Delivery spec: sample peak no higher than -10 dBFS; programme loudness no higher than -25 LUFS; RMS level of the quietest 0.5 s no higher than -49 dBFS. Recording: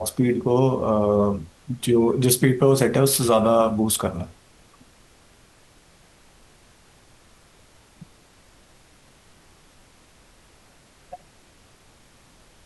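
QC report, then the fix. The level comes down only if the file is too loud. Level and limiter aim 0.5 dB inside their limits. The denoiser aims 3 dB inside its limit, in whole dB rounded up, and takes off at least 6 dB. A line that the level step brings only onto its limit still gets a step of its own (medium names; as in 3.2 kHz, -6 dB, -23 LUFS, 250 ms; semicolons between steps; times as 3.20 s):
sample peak -3.5 dBFS: fail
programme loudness -20.0 LUFS: fail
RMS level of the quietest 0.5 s -54 dBFS: pass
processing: trim -5.5 dB; peak limiter -10.5 dBFS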